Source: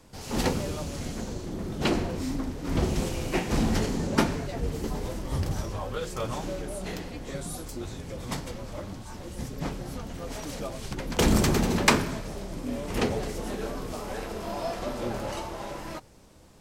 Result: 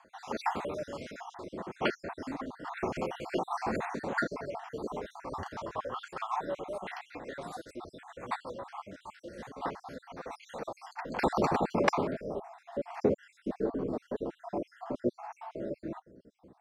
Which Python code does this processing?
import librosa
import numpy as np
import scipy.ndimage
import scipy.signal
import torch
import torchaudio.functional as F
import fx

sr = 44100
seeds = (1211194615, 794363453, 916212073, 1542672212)

y = fx.spec_dropout(x, sr, seeds[0], share_pct=58)
y = fx.filter_sweep_bandpass(y, sr, from_hz=1000.0, to_hz=330.0, start_s=10.72, end_s=13.55, q=1.1)
y = y * librosa.db_to_amplitude(6.0)